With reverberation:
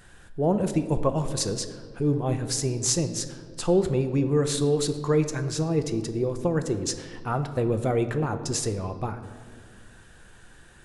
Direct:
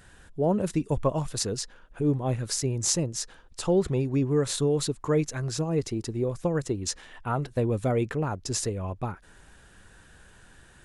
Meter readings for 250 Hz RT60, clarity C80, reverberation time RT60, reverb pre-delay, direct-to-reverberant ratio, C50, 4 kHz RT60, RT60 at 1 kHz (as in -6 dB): 2.5 s, 12.0 dB, 1.9 s, 3 ms, 8.0 dB, 11.0 dB, 1.1 s, 1.6 s